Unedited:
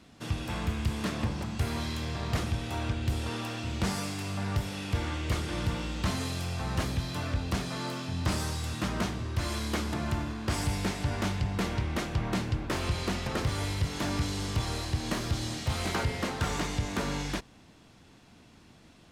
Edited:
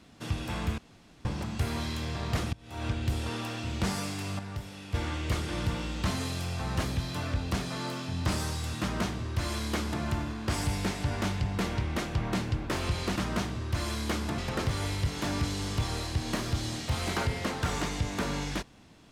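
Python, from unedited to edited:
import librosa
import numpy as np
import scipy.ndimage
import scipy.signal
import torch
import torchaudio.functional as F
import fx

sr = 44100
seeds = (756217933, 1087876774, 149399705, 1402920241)

y = fx.edit(x, sr, fx.room_tone_fill(start_s=0.78, length_s=0.47),
    fx.fade_in_from(start_s=2.53, length_s=0.33, curve='qua', floor_db=-23.0),
    fx.clip_gain(start_s=4.39, length_s=0.55, db=-7.5),
    fx.duplicate(start_s=8.8, length_s=1.22, to_s=13.16), tone=tone)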